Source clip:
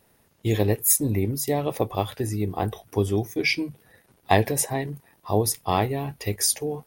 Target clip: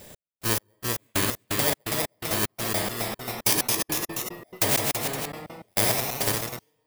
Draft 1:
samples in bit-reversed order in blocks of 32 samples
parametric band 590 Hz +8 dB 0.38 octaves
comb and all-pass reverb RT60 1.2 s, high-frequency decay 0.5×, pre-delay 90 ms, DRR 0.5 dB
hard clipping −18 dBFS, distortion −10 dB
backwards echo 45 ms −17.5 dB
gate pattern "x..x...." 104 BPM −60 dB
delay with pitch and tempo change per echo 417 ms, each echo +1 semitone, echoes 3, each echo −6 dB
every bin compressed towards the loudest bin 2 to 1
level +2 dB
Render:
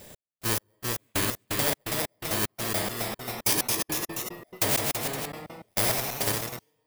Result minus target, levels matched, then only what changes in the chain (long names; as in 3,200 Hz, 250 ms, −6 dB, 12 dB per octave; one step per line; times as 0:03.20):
hard clipping: distortion +8 dB
change: hard clipping −12 dBFS, distortion −18 dB